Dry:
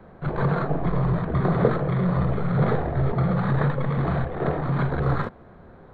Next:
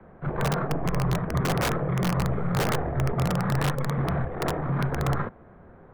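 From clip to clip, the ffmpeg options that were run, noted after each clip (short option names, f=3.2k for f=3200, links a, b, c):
-filter_complex "[0:a]lowpass=f=2.7k:w=0.5412,lowpass=f=2.7k:w=1.3066,acrossover=split=110|770[a][b][c];[b]aeval=exprs='(mod(7.94*val(0)+1,2)-1)/7.94':c=same[d];[a][d][c]amix=inputs=3:normalize=0,volume=-2.5dB"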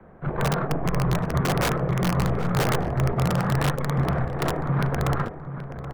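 -filter_complex "[0:a]asplit=2[a][b];[b]adelay=777,lowpass=f=2.1k:p=1,volume=-10dB,asplit=2[c][d];[d]adelay=777,lowpass=f=2.1k:p=1,volume=0.35,asplit=2[e][f];[f]adelay=777,lowpass=f=2.1k:p=1,volume=0.35,asplit=2[g][h];[h]adelay=777,lowpass=f=2.1k:p=1,volume=0.35[i];[a][c][e][g][i]amix=inputs=5:normalize=0,aeval=exprs='0.211*(cos(1*acos(clip(val(0)/0.211,-1,1)))-cos(1*PI/2))+0.00422*(cos(7*acos(clip(val(0)/0.211,-1,1)))-cos(7*PI/2))':c=same,volume=2dB"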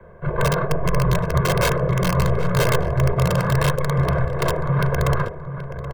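-af "aecho=1:1:1.9:0.91,volume=1.5dB"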